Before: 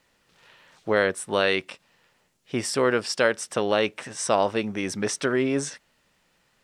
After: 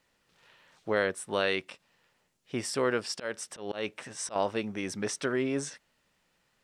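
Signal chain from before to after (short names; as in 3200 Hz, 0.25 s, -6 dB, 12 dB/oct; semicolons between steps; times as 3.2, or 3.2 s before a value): 2.8–4.36 auto swell 0.173 s; gain -6 dB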